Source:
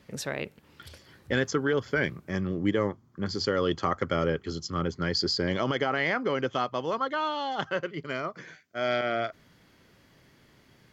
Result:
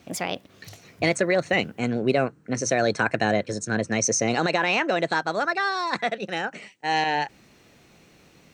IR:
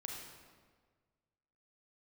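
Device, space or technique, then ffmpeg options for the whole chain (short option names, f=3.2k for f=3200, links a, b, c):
nightcore: -af "asetrate=56448,aresample=44100,volume=4.5dB"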